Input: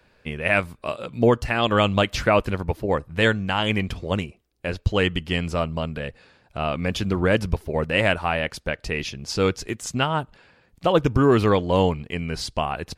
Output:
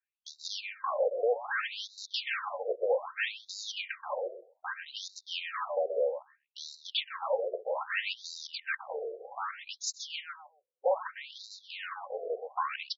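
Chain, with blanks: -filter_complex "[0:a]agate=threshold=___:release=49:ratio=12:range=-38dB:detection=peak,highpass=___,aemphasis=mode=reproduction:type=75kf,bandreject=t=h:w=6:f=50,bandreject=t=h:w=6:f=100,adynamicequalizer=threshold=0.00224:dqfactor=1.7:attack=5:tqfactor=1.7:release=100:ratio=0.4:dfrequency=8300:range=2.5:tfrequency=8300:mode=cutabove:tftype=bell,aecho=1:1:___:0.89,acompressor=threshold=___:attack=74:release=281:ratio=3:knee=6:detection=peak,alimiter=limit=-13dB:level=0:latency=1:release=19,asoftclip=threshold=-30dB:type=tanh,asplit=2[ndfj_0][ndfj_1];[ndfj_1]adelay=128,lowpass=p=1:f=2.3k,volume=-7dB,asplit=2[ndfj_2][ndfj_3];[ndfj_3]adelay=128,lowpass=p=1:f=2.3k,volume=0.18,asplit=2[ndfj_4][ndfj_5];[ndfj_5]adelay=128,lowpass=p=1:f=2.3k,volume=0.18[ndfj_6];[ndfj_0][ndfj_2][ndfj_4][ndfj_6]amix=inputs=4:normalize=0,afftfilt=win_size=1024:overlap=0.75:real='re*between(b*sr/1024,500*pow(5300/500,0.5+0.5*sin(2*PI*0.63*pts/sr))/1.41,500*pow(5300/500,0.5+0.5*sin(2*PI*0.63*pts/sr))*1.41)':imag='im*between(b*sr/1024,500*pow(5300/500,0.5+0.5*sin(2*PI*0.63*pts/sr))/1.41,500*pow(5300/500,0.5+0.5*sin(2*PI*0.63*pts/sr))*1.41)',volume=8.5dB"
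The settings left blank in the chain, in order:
-43dB, 49, 3.8, -27dB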